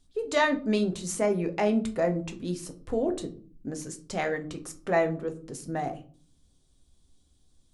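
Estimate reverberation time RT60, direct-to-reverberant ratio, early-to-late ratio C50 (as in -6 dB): 0.45 s, 5.5 dB, 15.0 dB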